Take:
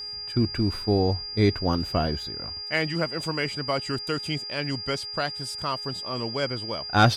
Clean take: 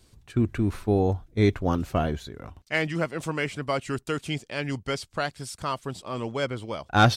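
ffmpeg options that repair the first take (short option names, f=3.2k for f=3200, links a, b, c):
-af "bandreject=f=416.8:t=h:w=4,bandreject=f=833.6:t=h:w=4,bandreject=f=1.2504k:t=h:w=4,bandreject=f=1.6672k:t=h:w=4,bandreject=f=2.084k:t=h:w=4,bandreject=f=2.5008k:t=h:w=4,bandreject=f=4.8k:w=30"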